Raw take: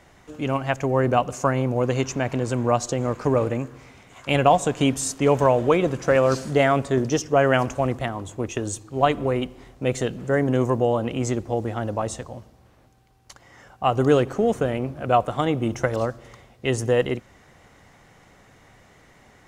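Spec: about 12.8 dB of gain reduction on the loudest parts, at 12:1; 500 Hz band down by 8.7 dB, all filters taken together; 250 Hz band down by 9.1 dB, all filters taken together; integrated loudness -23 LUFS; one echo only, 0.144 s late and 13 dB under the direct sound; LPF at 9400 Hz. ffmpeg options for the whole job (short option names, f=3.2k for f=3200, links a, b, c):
-af "lowpass=9.4k,equalizer=f=250:t=o:g=-9,equalizer=f=500:t=o:g=-8.5,acompressor=threshold=-30dB:ratio=12,aecho=1:1:144:0.224,volume=12dB"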